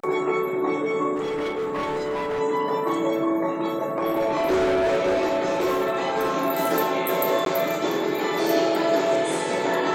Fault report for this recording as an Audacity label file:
1.150000	2.410000	clipped -23.5 dBFS
3.620000	6.330000	clipped -18 dBFS
7.450000	7.460000	dropout 12 ms

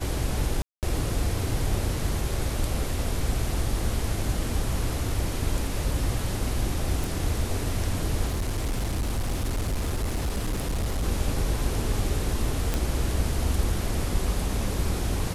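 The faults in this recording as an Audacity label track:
0.620000	0.830000	dropout 208 ms
7.040000	7.040000	pop
8.270000	11.040000	clipped -23 dBFS
12.740000	12.740000	pop

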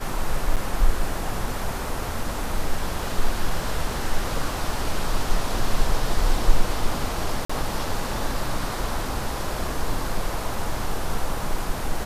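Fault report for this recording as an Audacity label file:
0.560000	0.570000	dropout 7.5 ms
7.450000	7.500000	dropout 45 ms

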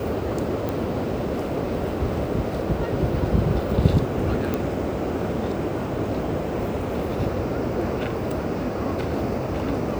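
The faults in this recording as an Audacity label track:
0.690000	0.690000	pop
4.540000	4.540000	pop -11 dBFS

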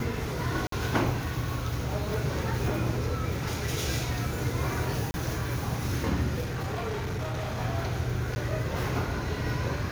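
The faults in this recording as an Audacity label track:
0.670000	0.720000	dropout 53 ms
5.110000	5.140000	dropout 30 ms
6.400000	7.590000	clipped -28.5 dBFS
8.350000	8.360000	dropout 10 ms

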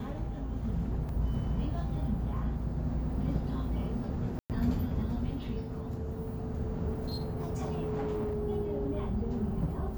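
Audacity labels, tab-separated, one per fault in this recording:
1.090000	1.090000	dropout 2.3 ms
4.390000	4.500000	dropout 108 ms
6.910000	8.350000	clipped -29.5 dBFS

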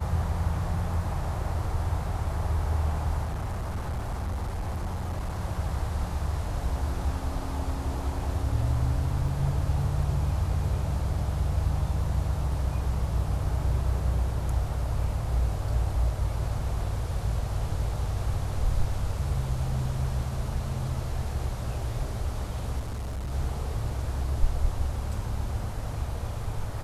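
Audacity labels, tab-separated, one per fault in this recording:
3.230000	5.400000	clipped -27 dBFS
9.280000	9.280000	dropout 3.7 ms
22.790000	23.320000	clipped -29.5 dBFS

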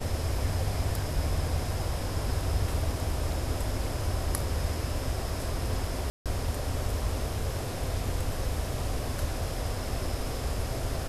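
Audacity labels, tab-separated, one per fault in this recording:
6.100000	6.260000	dropout 157 ms

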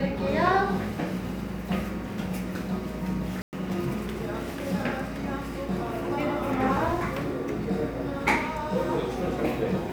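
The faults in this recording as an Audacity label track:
3.420000	3.530000	dropout 109 ms

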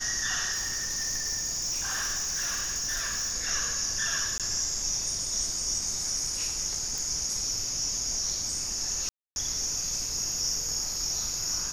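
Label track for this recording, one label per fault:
0.520000	3.340000	clipped -26.5 dBFS
4.380000	4.400000	dropout 17 ms
6.980000	6.980000	pop
9.090000	9.360000	dropout 271 ms

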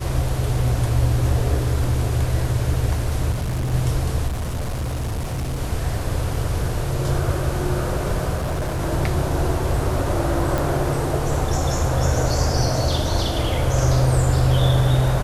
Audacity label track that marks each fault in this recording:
3.310000	3.740000	clipped -20 dBFS
4.270000	5.610000	clipped -21.5 dBFS
8.350000	8.810000	clipped -20 dBFS
10.580000	10.580000	pop

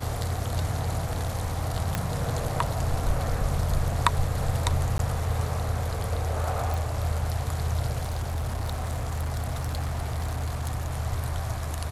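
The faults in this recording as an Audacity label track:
1.950000	1.950000	pop
4.980000	4.990000	dropout 12 ms
6.740000	6.740000	pop
8.000000	10.920000	clipped -25 dBFS

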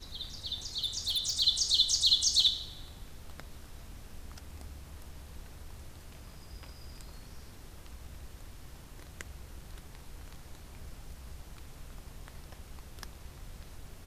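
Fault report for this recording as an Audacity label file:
0.840000	1.410000	clipped -26.5 dBFS

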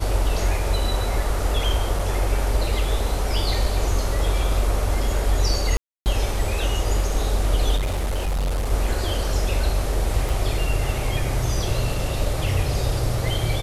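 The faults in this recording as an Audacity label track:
1.990000	1.990000	dropout 4.1 ms
5.770000	6.060000	dropout 289 ms
7.760000	8.720000	clipped -20 dBFS
10.290000	10.290000	pop

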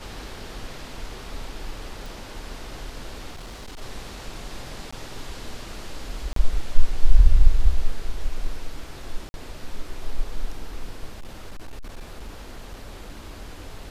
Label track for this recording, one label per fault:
2.060000	2.060000	pop
3.300000	3.820000	clipped -34 dBFS
4.910000	4.920000	dropout 15 ms
6.330000	6.360000	dropout 33 ms
9.290000	9.340000	dropout 51 ms
11.140000	13.610000	clipped -30.5 dBFS

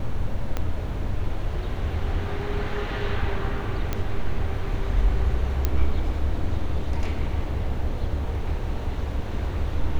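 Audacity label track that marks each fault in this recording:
0.570000	0.570000	pop -13 dBFS
3.930000	3.930000	pop -12 dBFS
5.650000	5.650000	pop -9 dBFS

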